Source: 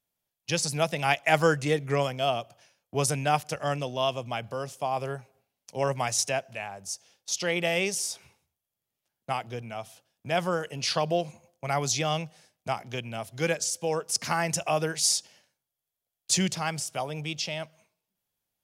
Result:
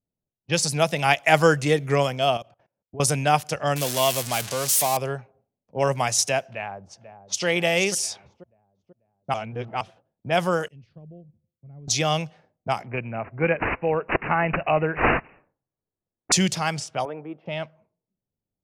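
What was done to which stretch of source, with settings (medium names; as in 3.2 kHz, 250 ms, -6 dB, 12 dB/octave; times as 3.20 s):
2.37–3.00 s: level held to a coarse grid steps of 20 dB
3.76–4.97 s: zero-crossing glitches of -19 dBFS
6.47–7.45 s: echo throw 490 ms, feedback 55%, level -10 dB
9.34–9.81 s: reverse
10.68–11.88 s: amplifier tone stack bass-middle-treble 10-0-1
12.86–16.32 s: careless resampling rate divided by 8×, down none, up filtered
17.05–17.46 s: Chebyshev band-pass 300–1500 Hz
whole clip: level-controlled noise filter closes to 380 Hz, open at -25 dBFS; trim +5 dB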